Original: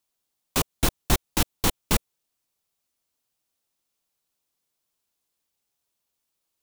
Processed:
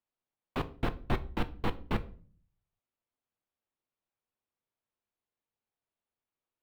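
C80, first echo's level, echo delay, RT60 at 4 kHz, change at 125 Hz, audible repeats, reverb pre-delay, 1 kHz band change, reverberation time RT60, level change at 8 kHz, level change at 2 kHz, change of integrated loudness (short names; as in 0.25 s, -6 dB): 22.5 dB, none, none, 0.35 s, -6.5 dB, none, 8 ms, -6.5 dB, 0.45 s, -33.5 dB, -9.0 dB, -10.5 dB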